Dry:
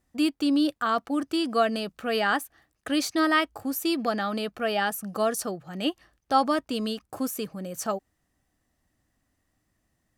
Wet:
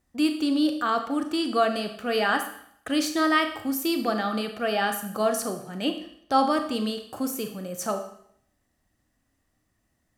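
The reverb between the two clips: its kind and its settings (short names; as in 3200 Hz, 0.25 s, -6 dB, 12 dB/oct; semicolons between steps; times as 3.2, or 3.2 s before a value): Schroeder reverb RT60 0.66 s, combs from 26 ms, DRR 6 dB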